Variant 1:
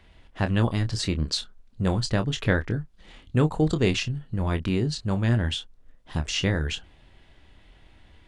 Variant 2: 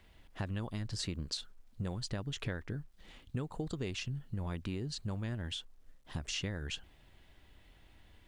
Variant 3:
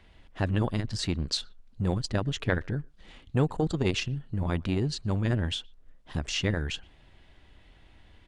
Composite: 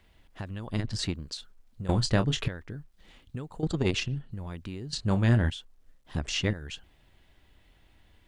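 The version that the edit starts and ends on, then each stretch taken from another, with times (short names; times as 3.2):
2
0.71–1.12 from 3, crossfade 0.10 s
1.89–2.48 from 1
3.63–4.31 from 3
4.93–5.5 from 1
6.13–6.53 from 3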